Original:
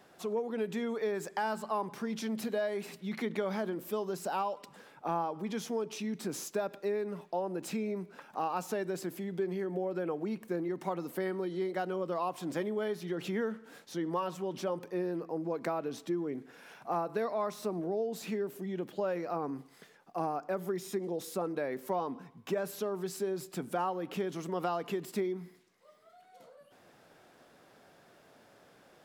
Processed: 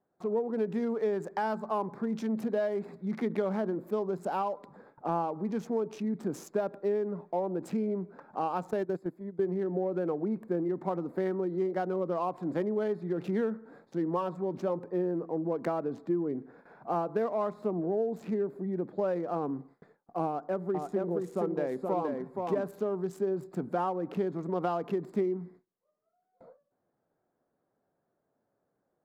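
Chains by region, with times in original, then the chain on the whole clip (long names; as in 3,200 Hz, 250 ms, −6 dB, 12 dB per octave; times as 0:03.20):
0:08.71–0:09.49: noise gate −37 dBFS, range −14 dB + high-shelf EQ 7,100 Hz +10.5 dB
0:20.27–0:22.68: Chebyshev low-pass filter 11,000 Hz + single-tap delay 473 ms −3.5 dB
whole clip: adaptive Wiener filter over 15 samples; noise gate with hold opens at −48 dBFS; tilt shelving filter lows +4.5 dB, about 1,500 Hz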